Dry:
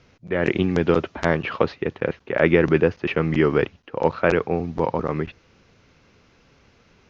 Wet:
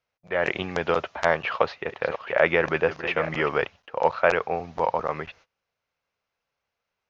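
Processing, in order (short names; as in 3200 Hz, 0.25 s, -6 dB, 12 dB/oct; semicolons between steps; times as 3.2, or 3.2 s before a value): 1.41–3.49 reverse delay 0.471 s, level -11 dB; gate -46 dBFS, range -24 dB; resonant low shelf 450 Hz -11 dB, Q 1.5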